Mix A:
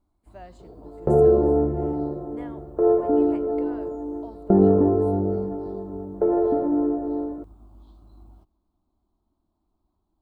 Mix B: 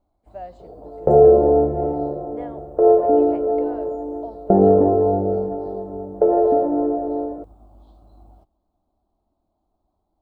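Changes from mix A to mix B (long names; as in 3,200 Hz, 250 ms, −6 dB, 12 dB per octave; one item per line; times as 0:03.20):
speech: add high-frequency loss of the air 81 metres
master: add flat-topped bell 610 Hz +9.5 dB 1 octave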